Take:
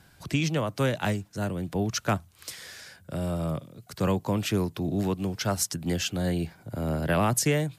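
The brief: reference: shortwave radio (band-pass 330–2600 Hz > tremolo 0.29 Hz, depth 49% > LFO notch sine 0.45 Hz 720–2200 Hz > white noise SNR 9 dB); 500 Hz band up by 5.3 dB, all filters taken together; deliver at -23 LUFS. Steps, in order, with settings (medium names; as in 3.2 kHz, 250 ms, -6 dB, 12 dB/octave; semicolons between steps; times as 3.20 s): band-pass 330–2600 Hz; peaking EQ 500 Hz +7.5 dB; tremolo 0.29 Hz, depth 49%; LFO notch sine 0.45 Hz 720–2200 Hz; white noise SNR 9 dB; trim +9 dB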